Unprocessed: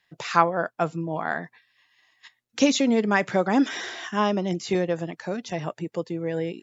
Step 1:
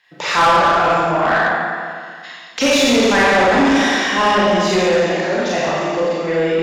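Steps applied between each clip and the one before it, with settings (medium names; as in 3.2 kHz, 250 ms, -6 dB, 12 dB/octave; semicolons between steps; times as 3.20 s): Schroeder reverb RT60 1.9 s, combs from 29 ms, DRR -7.5 dB; overdrive pedal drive 22 dB, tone 4 kHz, clips at 0 dBFS; trim -5 dB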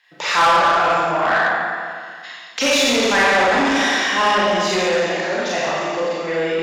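bass shelf 440 Hz -8.5 dB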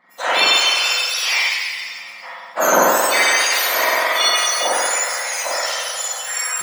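spectrum inverted on a logarithmic axis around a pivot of 1.9 kHz; trim +3.5 dB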